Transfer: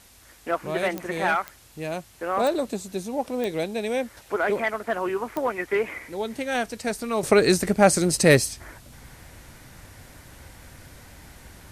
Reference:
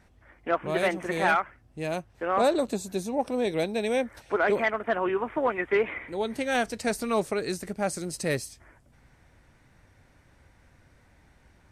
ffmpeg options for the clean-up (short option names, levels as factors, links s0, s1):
-af "adeclick=t=4,agate=range=0.0891:threshold=0.00891,asetnsamples=n=441:p=0,asendcmd='7.23 volume volume -12dB',volume=1"